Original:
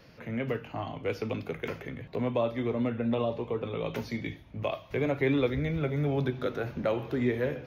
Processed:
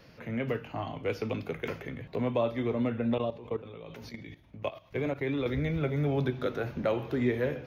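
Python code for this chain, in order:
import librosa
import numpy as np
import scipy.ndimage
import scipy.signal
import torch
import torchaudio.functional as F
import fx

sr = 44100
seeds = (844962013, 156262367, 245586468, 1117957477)

y = fx.level_steps(x, sr, step_db=15, at=(3.18, 5.46))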